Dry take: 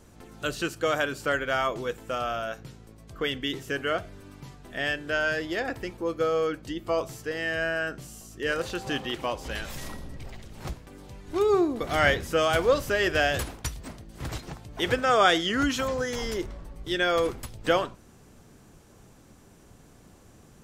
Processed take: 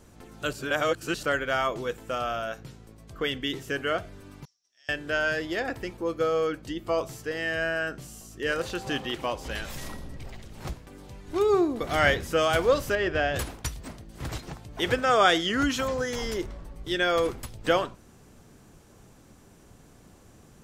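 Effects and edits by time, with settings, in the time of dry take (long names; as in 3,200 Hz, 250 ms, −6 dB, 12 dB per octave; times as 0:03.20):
0:00.53–0:01.23: reverse
0:04.45–0:04.89: resonant band-pass 5,600 Hz, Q 16
0:12.95–0:13.36: head-to-tape spacing loss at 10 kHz 20 dB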